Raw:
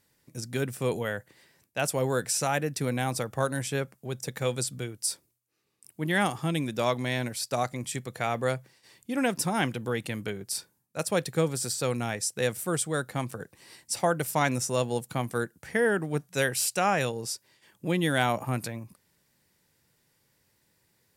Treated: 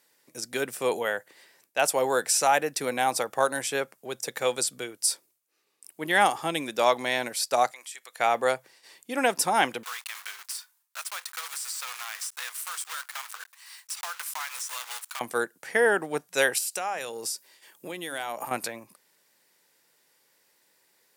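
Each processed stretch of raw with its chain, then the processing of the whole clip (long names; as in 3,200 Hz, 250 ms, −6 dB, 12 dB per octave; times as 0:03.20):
0:07.71–0:08.20: high-pass filter 1,100 Hz + downward compressor 2 to 1, threshold −48 dBFS
0:09.83–0:15.21: one scale factor per block 3 bits + Chebyshev high-pass filter 1,100 Hz, order 3 + downward compressor 4 to 1, threshold −36 dBFS
0:16.58–0:18.51: high-shelf EQ 8,100 Hz +9 dB + downward compressor 10 to 1, threshold −31 dBFS + mains-hum notches 50/100/150/200/250/300 Hz
whole clip: high-pass filter 420 Hz 12 dB per octave; dynamic equaliser 830 Hz, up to +5 dB, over −43 dBFS, Q 3.3; level +4.5 dB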